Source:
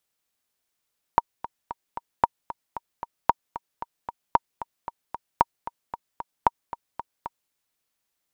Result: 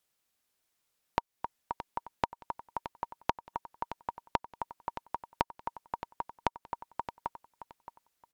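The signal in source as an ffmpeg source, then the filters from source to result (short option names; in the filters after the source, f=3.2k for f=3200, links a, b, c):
-f lavfi -i "aevalsrc='pow(10,(-3-15.5*gte(mod(t,4*60/227),60/227))/20)*sin(2*PI*939*mod(t,60/227))*exp(-6.91*mod(t,60/227)/0.03)':d=6.34:s=44100"
-filter_complex "[0:a]acompressor=threshold=-27dB:ratio=6,asplit=2[a][b];[b]aecho=0:1:621|1242|1863:0.251|0.0553|0.0122[c];[a][c]amix=inputs=2:normalize=0" -ar 48000 -c:a aac -b:a 192k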